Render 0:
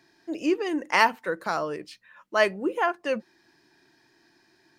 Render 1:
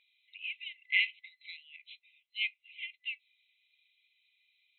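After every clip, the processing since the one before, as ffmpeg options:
-af "afftfilt=real='re*between(b*sr/4096,2000,4100)':imag='im*between(b*sr/4096,2000,4100)':win_size=4096:overlap=0.75"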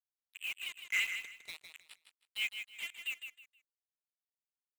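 -af "asoftclip=type=tanh:threshold=0.0473,acrusher=bits=6:mix=0:aa=0.5,aecho=1:1:158|316|474:0.398|0.0995|0.0249"

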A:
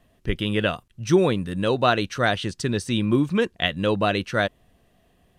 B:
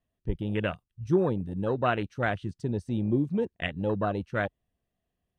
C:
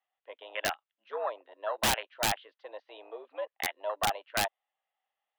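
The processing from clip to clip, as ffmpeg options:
-af "afwtdn=0.0631,equalizer=f=64:w=0.55:g=4,volume=0.473"
-af "highpass=f=590:t=q:w=0.5412,highpass=f=590:t=q:w=1.307,lowpass=f=3400:t=q:w=0.5176,lowpass=f=3400:t=q:w=0.7071,lowpass=f=3400:t=q:w=1.932,afreqshift=99,aeval=exprs='(mod(12.6*val(0)+1,2)-1)/12.6':c=same,volume=1.33"

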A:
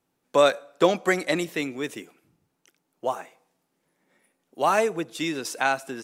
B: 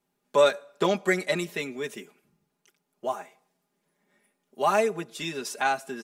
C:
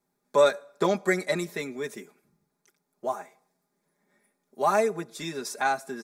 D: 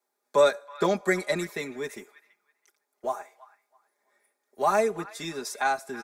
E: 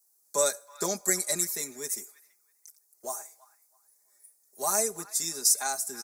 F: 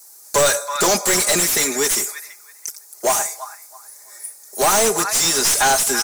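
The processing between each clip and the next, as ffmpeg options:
-af "aecho=1:1:4.9:0.83,volume=0.596"
-af "equalizer=f=2900:w=5:g=-15"
-filter_complex "[0:a]acrossover=split=350|1000|5100[s0][s1][s2][s3];[s0]aeval=exprs='sgn(val(0))*max(abs(val(0))-0.00251,0)':c=same[s4];[s2]asplit=2[s5][s6];[s6]adelay=327,lowpass=f=1600:p=1,volume=0.299,asplit=2[s7][s8];[s8]adelay=327,lowpass=f=1600:p=1,volume=0.29,asplit=2[s9][s10];[s10]adelay=327,lowpass=f=1600:p=1,volume=0.29[s11];[s5][s7][s9][s11]amix=inputs=4:normalize=0[s12];[s4][s1][s12][s3]amix=inputs=4:normalize=0"
-af "aexciter=amount=14.6:drive=5.6:freq=4800,volume=0.398"
-filter_complex "[0:a]aeval=exprs='clip(val(0),-1,0.0335)':c=same,asplit=2[s0][s1];[s1]highpass=f=720:p=1,volume=50.1,asoftclip=type=tanh:threshold=0.422[s2];[s0][s2]amix=inputs=2:normalize=0,lowpass=f=5100:p=1,volume=0.501,volume=1.19"

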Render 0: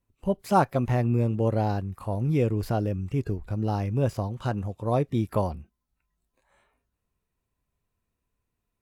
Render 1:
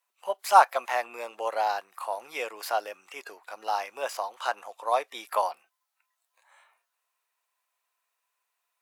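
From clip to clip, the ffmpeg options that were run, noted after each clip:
-af "highpass=f=750:w=0.5412,highpass=f=750:w=1.3066,volume=2.37"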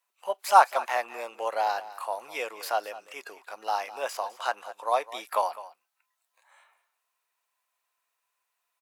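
-af "aecho=1:1:206:0.15"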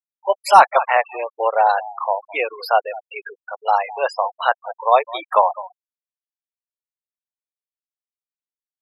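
-af "afftfilt=real='re*gte(hypot(re,im),0.0282)':imag='im*gte(hypot(re,im),0.0282)':win_size=1024:overlap=0.75,apsyclip=4.47,volume=0.841"

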